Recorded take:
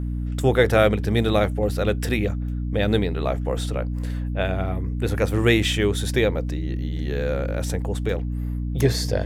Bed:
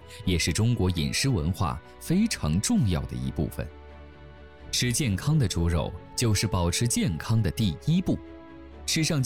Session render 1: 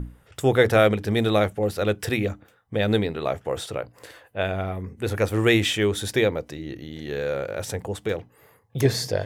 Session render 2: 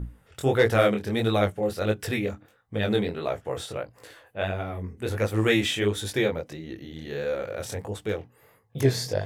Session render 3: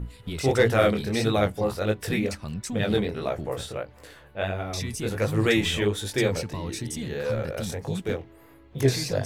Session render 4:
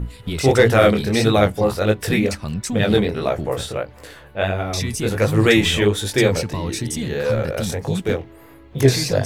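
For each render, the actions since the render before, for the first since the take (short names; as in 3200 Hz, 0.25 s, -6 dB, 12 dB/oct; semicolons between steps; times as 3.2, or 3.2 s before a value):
notches 60/120/180/240/300 Hz
hard clip -6.5 dBFS, distortion -34 dB; chorus 1.5 Hz, delay 17.5 ms, depth 7.2 ms
add bed -8.5 dB
gain +7.5 dB; limiter -2 dBFS, peak gain reduction 1.5 dB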